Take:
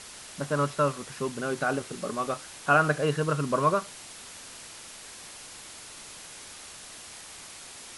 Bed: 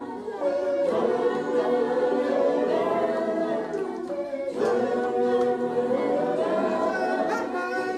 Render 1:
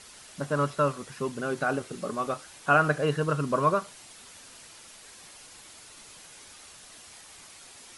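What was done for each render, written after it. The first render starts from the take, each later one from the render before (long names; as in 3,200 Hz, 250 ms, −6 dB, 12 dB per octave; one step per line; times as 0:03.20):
broadband denoise 6 dB, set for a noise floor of −45 dBFS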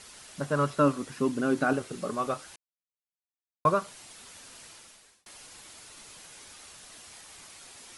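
0:00.78–0:01.73: parametric band 280 Hz +11 dB 0.5 octaves
0:02.56–0:03.65: silence
0:04.70–0:05.26: fade out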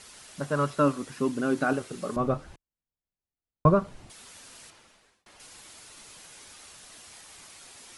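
0:02.16–0:04.10: spectral tilt −4.5 dB per octave
0:04.70–0:05.40: low-pass filter 2,300 Hz 6 dB per octave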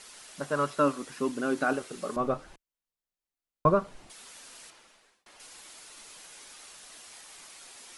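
parametric band 85 Hz −12.5 dB 2.2 octaves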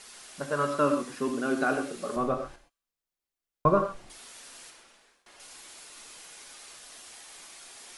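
delay with a high-pass on its return 64 ms, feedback 53%, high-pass 3,000 Hz, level −22.5 dB
reverb whose tail is shaped and stops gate 150 ms flat, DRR 5 dB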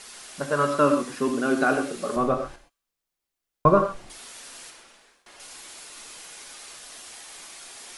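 level +5 dB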